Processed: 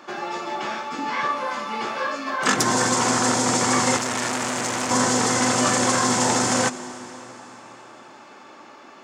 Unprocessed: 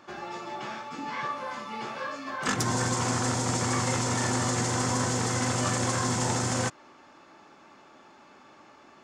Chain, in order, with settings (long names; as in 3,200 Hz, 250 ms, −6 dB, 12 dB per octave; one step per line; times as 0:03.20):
high-pass filter 220 Hz 12 dB per octave
convolution reverb RT60 4.7 s, pre-delay 106 ms, DRR 14.5 dB
0:03.97–0:04.91: saturating transformer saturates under 3,000 Hz
level +8.5 dB